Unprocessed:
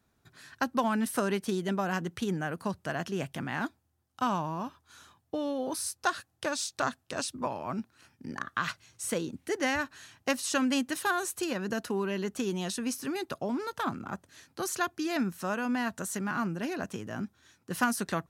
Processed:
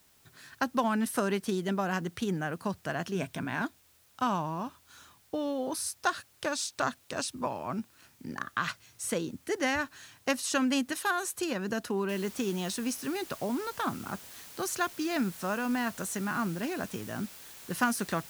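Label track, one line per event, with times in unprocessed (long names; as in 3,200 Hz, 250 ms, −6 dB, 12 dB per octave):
3.140000	3.620000	EQ curve with evenly spaced ripples crests per octave 1.6, crest to trough 7 dB
10.920000	11.350000	low-shelf EQ 230 Hz −10.5 dB
12.090000	12.090000	noise floor change −64 dB −49 dB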